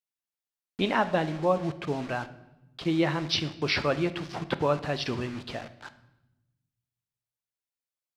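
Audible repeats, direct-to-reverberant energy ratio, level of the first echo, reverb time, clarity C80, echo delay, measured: no echo, 11.0 dB, no echo, 0.90 s, 17.0 dB, no echo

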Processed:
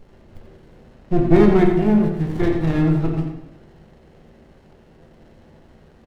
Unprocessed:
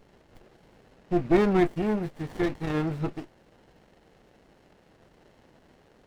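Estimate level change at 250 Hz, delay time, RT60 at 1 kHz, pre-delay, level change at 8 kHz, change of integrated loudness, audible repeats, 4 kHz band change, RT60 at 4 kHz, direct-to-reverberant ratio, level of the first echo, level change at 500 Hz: +9.5 dB, 88 ms, 0.85 s, 6 ms, no reading, +8.5 dB, 1, +3.5 dB, 0.80 s, 1.0 dB, -8.0 dB, +7.5 dB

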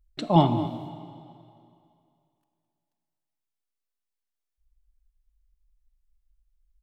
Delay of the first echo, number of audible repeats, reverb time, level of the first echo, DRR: 213 ms, 1, 2.5 s, -15.0 dB, 9.5 dB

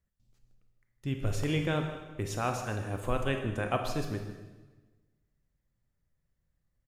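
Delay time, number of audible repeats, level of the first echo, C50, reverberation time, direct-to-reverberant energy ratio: 155 ms, 1, -15.0 dB, 6.0 dB, 1.2 s, 4.5 dB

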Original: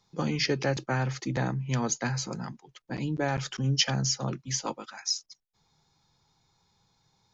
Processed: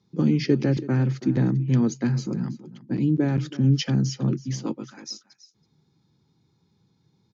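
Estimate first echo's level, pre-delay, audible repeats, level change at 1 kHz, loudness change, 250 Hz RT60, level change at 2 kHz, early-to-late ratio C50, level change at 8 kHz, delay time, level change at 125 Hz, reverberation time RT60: -17.0 dB, no reverb, 1, -6.5 dB, +6.0 dB, no reverb, -4.5 dB, no reverb, no reading, 327 ms, +8.0 dB, no reverb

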